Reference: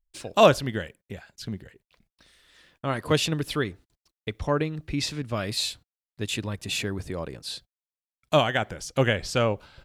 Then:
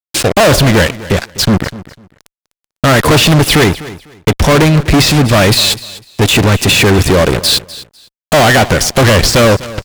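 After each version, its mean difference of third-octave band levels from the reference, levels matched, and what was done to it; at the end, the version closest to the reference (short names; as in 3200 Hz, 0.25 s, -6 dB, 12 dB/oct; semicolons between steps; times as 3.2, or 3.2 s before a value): 11.0 dB: de-esser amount 85%; fuzz box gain 41 dB, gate -45 dBFS; on a send: feedback echo 0.25 s, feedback 21%, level -17.5 dB; on the sum: gain +7.5 dB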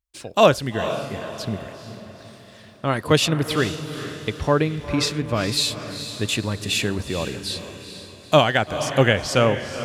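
6.0 dB: HPF 55 Hz; AGC gain up to 4.5 dB; diffused feedback echo 0.453 s, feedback 46%, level -10 dB; gain +1.5 dB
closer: second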